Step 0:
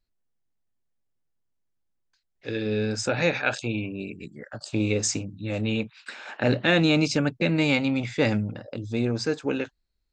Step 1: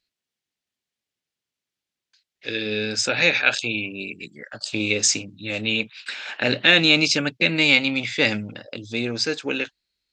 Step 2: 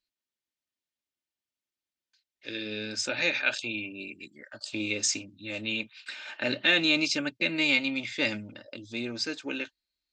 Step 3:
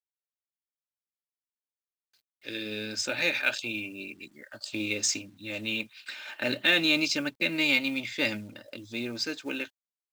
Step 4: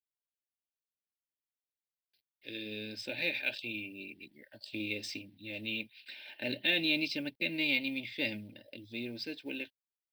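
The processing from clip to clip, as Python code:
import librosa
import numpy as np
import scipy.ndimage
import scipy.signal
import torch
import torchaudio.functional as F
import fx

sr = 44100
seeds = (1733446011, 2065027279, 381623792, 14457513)

y1 = fx.weighting(x, sr, curve='D')
y2 = y1 + 0.46 * np.pad(y1, (int(3.3 * sr / 1000.0), 0))[:len(y1)]
y2 = y2 * librosa.db_to_amplitude(-9.0)
y3 = fx.quant_companded(y2, sr, bits=6)
y4 = fx.fixed_phaser(y3, sr, hz=3000.0, stages=4)
y4 = y4 * librosa.db_to_amplitude(-5.0)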